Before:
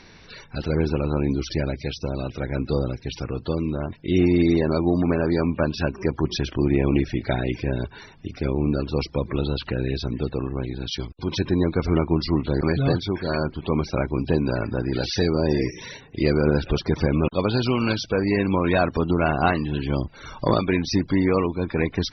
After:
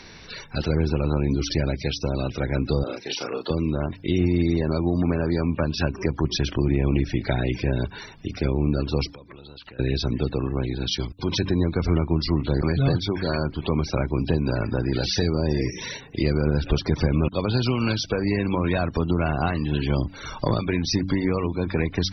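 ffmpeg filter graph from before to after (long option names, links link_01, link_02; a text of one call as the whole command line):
ffmpeg -i in.wav -filter_complex "[0:a]asettb=1/sr,asplit=3[link_01][link_02][link_03];[link_01]atrim=end=2.834[link_04];[link_02]atrim=start=2.83:end=3.5,asetpts=PTS-STARTPTS,afade=type=in:duration=0.004:curve=qsin,afade=type=out:start_time=0.666:duration=0.004:curve=qsin,highpass=400,asplit=2[link_05][link_06];[link_06]adelay=35,volume=-2dB[link_07];[link_05][link_07]amix=inputs=2:normalize=0,atrim=end_sample=29547[link_08];[link_03]atrim=start=3.496[link_09];[link_04][link_08]acrossfade=duration=0.004:curve1=hsin:curve2=qsin[link_10];[link_10][link_09]acrossfade=duration=0.004:curve1=qsin:curve2=hsin,asettb=1/sr,asplit=3[link_11][link_12][link_13];[link_11]atrim=end=9.114[link_14];[link_12]atrim=start=9.11:end=9.79,asetpts=PTS-STARTPTS,afade=type=in:duration=0.004:curve=qsin,afade=type=out:start_time=0.676:duration=0.004:curve=qsin,lowshelf=frequency=480:gain=-7.5,acompressor=threshold=-43dB:ratio=10:attack=3.2:release=140:knee=1:detection=peak[link_15];[link_13]atrim=start=9.786[link_16];[link_14][link_15]acrossfade=duration=0.004:curve1=hsin:curve2=qsin[link_17];[link_17][link_16]acrossfade=duration=0.004:curve1=qsin:curve2=hsin,highshelf=frequency=4400:gain=5.5,bandreject=frequency=94.99:width_type=h:width=4,bandreject=frequency=189.98:width_type=h:width=4,bandreject=frequency=284.97:width_type=h:width=4,acrossover=split=160[link_18][link_19];[link_19]acompressor=threshold=-25dB:ratio=6[link_20];[link_18][link_20]amix=inputs=2:normalize=0,volume=3dB" out.wav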